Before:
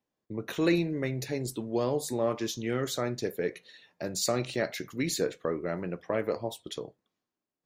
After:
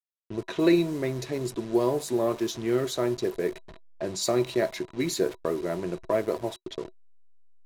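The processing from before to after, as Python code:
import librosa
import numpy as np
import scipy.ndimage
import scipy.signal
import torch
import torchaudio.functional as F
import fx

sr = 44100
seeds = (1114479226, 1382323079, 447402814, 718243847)

y = fx.delta_hold(x, sr, step_db=-40.0)
y = fx.env_lowpass(y, sr, base_hz=2600.0, full_db=-27.5)
y = fx.small_body(y, sr, hz=(370.0, 650.0, 980.0, 3900.0), ring_ms=70, db=11)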